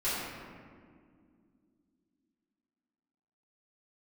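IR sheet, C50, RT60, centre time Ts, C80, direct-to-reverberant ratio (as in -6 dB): -2.5 dB, 2.1 s, 121 ms, 0.0 dB, -14.0 dB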